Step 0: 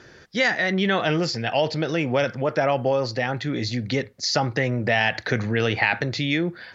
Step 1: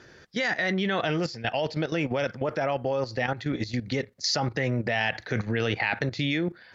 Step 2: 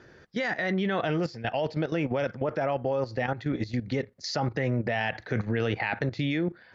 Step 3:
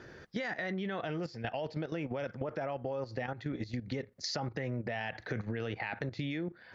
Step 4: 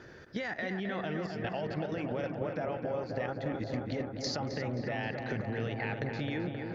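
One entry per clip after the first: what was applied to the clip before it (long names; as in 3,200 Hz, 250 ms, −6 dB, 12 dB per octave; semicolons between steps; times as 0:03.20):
output level in coarse steps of 13 dB
high-shelf EQ 2,600 Hz −10 dB
downward compressor 4 to 1, threshold −37 dBFS, peak gain reduction 12 dB; level +2 dB
feedback echo with a low-pass in the loop 264 ms, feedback 83%, low-pass 2,600 Hz, level −5.5 dB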